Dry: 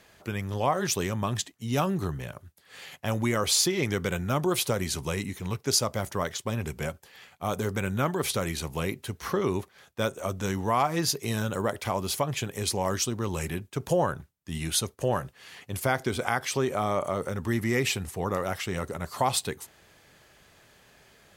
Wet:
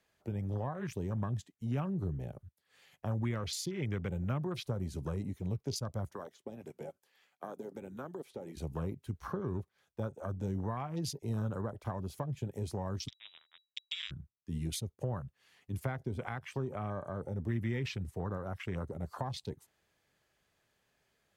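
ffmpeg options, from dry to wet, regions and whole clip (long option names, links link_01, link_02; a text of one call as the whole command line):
ffmpeg -i in.wav -filter_complex "[0:a]asettb=1/sr,asplit=3[link_01][link_02][link_03];[link_01]atrim=end=6.144[link_04];[link_02]atrim=start=6.14:end=8.57,asetpts=PTS-STARTPTS,afade=type=in:duration=0.004:curve=qsin,afade=type=out:start_time=2.426:duration=0.004:curve=qsin,acrossover=split=640|3300[link_05][link_06][link_07];[link_05]acompressor=threshold=-34dB:ratio=4[link_08];[link_06]acompressor=threshold=-42dB:ratio=4[link_09];[link_07]acompressor=threshold=-47dB:ratio=4[link_10];[link_08][link_09][link_10]amix=inputs=3:normalize=0,highpass=250[link_11];[link_03]atrim=start=8.566[link_12];[link_04][link_11]acrossfade=duration=0.004:curve1=hsin:curve2=qsin[link_13];[link_13][link_12]acrossfade=duration=0.004:curve1=qsin:curve2=hsin,asettb=1/sr,asplit=3[link_14][link_15][link_16];[link_14]atrim=end=13.084[link_17];[link_15]atrim=start=13.08:end=14.11,asetpts=PTS-STARTPTS,afade=type=in:duration=0.004:curve=qsin,afade=type=out:start_time=1.026:duration=0.004:curve=qsin,lowshelf=frequency=110:gain=11.5,acrusher=bits=2:mix=0:aa=0.5,lowpass=frequency=3300:width_type=q:width=0.5098,lowpass=frequency=3300:width_type=q:width=0.6013,lowpass=frequency=3300:width_type=q:width=0.9,lowpass=frequency=3300:width_type=q:width=2.563,afreqshift=-3900[link_18];[link_16]atrim=start=14.106[link_19];[link_17][link_18]acrossfade=duration=0.004:curve1=hsin:curve2=qsin[link_20];[link_20][link_19]acrossfade=duration=0.004:curve1=qsin:curve2=hsin,afwtdn=0.0224,acrossover=split=180[link_21][link_22];[link_22]acompressor=threshold=-37dB:ratio=4[link_23];[link_21][link_23]amix=inputs=2:normalize=0,volume=-2.5dB" out.wav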